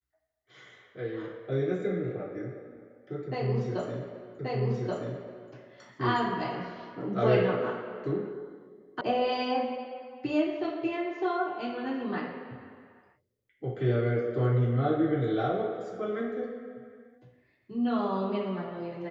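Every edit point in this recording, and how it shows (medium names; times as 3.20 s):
4.39 s: repeat of the last 1.13 s
9.01 s: sound stops dead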